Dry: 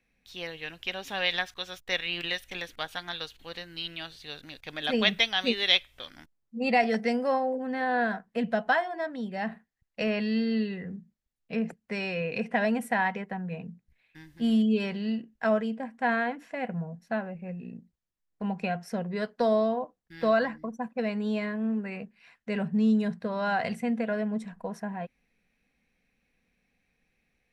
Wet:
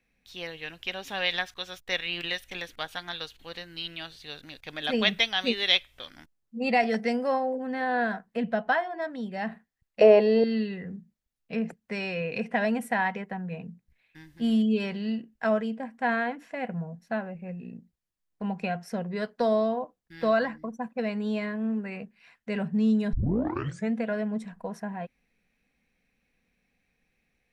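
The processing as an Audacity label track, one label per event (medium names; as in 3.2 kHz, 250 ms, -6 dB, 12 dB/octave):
8.370000	9.020000	treble shelf 6.1 kHz -11.5 dB
10.010000	10.440000	high-order bell 590 Hz +16 dB
23.130000	23.130000	tape start 0.80 s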